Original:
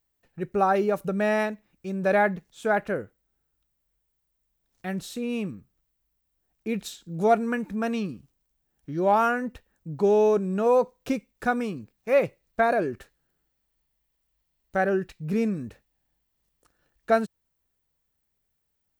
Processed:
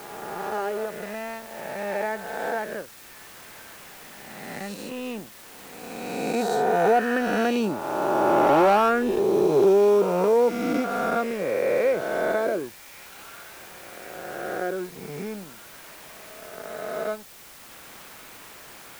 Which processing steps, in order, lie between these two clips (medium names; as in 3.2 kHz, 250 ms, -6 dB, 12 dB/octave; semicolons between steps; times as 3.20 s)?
reverse spectral sustain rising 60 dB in 2.45 s; Doppler pass-by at 8.43 s, 17 m/s, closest 16 m; waveshaping leveller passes 2; bass shelf 160 Hz -7 dB; in parallel at -8 dB: word length cut 6-bit, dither triangular; on the sum: feedback echo behind a high-pass 1111 ms, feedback 71%, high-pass 3.5 kHz, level -12 dB; dynamic bell 390 Hz, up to +6 dB, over -31 dBFS, Q 1.1; three bands compressed up and down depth 40%; trim -5.5 dB